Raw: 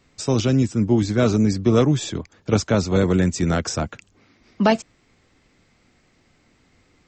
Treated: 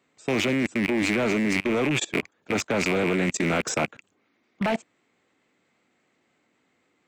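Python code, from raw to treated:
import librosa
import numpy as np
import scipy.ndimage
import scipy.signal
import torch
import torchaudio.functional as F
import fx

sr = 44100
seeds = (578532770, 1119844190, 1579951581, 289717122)

p1 = fx.rattle_buzz(x, sr, strikes_db=-30.0, level_db=-15.0)
p2 = fx.over_compress(p1, sr, threshold_db=-22.0, ratio=-1.0)
p3 = p1 + (p2 * 10.0 ** (-2.0 / 20.0))
p4 = scipy.signal.sosfilt(scipy.signal.butter(2, 240.0, 'highpass', fs=sr, output='sos'), p3)
p5 = np.clip(10.0 ** (12.0 / 20.0) * p4, -1.0, 1.0) / 10.0 ** (12.0 / 20.0)
p6 = fx.transient(p5, sr, attack_db=-4, sustain_db=0)
p7 = fx.level_steps(p6, sr, step_db=23)
p8 = fx.peak_eq(p7, sr, hz=5200.0, db=-10.0, octaves=0.61)
y = fx.doppler_dist(p8, sr, depth_ms=0.23)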